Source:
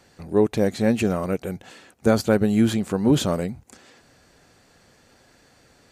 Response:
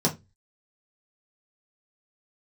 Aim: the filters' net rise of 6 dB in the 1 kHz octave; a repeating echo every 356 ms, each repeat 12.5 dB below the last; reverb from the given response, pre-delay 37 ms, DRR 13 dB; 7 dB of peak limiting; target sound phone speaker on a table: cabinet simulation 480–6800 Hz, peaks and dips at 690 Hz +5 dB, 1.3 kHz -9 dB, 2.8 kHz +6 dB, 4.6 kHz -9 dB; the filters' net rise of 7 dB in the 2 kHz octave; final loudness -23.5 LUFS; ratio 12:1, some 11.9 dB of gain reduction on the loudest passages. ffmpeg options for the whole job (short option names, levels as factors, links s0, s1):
-filter_complex "[0:a]equalizer=f=1000:t=o:g=6,equalizer=f=2000:t=o:g=8.5,acompressor=threshold=0.0631:ratio=12,alimiter=limit=0.0891:level=0:latency=1,aecho=1:1:356|712|1068:0.237|0.0569|0.0137,asplit=2[s0][s1];[1:a]atrim=start_sample=2205,adelay=37[s2];[s1][s2]afir=irnorm=-1:irlink=0,volume=0.0596[s3];[s0][s3]amix=inputs=2:normalize=0,highpass=f=480:w=0.5412,highpass=f=480:w=1.3066,equalizer=f=690:t=q:w=4:g=5,equalizer=f=1300:t=q:w=4:g=-9,equalizer=f=2800:t=q:w=4:g=6,equalizer=f=4600:t=q:w=4:g=-9,lowpass=f=6800:w=0.5412,lowpass=f=6800:w=1.3066,volume=4.73"